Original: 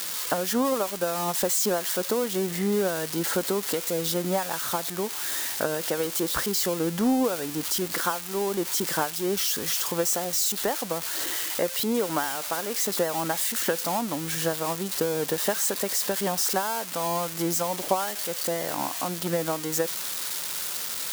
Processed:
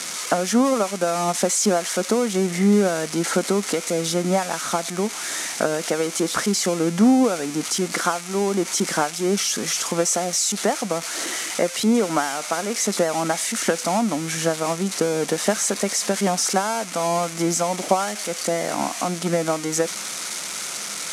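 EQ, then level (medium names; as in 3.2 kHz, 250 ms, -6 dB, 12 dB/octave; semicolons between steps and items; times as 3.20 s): cabinet simulation 210–9800 Hz, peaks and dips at 210 Hz +6 dB, 690 Hz +6 dB, 1.3 kHz +6 dB, 2.2 kHz +8 dB, 6.1 kHz +5 dB; bass shelf 330 Hz +11.5 dB; treble shelf 5.8 kHz +6 dB; 0.0 dB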